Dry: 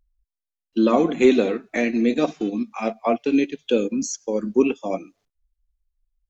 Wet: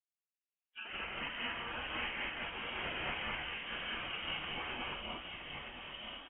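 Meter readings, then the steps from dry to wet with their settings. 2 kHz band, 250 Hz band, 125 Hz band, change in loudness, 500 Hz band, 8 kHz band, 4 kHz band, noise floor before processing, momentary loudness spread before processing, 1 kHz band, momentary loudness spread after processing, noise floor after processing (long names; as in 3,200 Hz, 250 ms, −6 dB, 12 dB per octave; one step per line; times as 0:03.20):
−5.5 dB, −30.5 dB, −14.5 dB, −18.0 dB, −28.0 dB, can't be measured, −1.0 dB, below −85 dBFS, 10 LU, −13.0 dB, 7 LU, below −85 dBFS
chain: frequency axis turned over on the octave scale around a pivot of 1,700 Hz
gate on every frequency bin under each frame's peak −25 dB weak
downward compressor 6 to 1, threshold −51 dBFS, peak gain reduction 14 dB
delay with pitch and tempo change per echo 84 ms, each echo −6 semitones, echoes 3, each echo −6 dB
automatic gain control gain up to 6 dB
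voice inversion scrambler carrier 3,500 Hz
parametric band 120 Hz −11.5 dB 0.23 octaves
on a send: single-tap delay 971 ms −7 dB
on the sum: reverb whose tail is shaped and stops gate 250 ms rising, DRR −3 dB
multiband upward and downward expander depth 40%
level +6.5 dB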